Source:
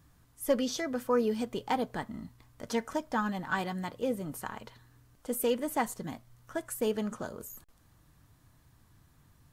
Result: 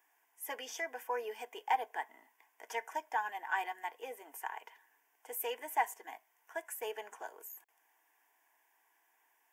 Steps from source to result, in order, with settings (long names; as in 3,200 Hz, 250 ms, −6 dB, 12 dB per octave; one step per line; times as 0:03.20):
high-pass filter 570 Hz 24 dB per octave
parametric band 9,300 Hz −7 dB 0.79 octaves
phaser with its sweep stopped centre 840 Hz, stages 8
level +1.5 dB